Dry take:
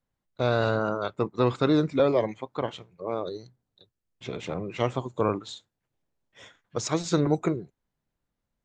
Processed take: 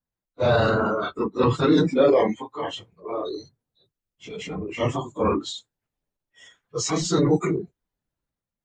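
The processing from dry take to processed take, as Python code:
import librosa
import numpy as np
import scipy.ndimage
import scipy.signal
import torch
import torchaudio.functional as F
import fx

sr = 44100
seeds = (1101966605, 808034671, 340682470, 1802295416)

y = fx.phase_scramble(x, sr, seeds[0], window_ms=50)
y = fx.noise_reduce_blind(y, sr, reduce_db=13)
y = fx.transient(y, sr, attack_db=-3, sustain_db=6)
y = y * librosa.db_to_amplitude(4.5)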